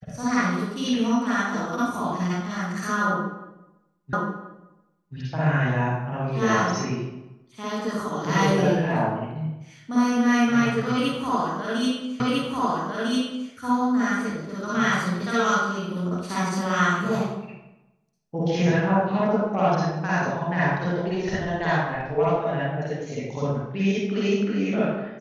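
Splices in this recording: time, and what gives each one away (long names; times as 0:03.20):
0:04.13: the same again, the last 1.03 s
0:12.20: the same again, the last 1.3 s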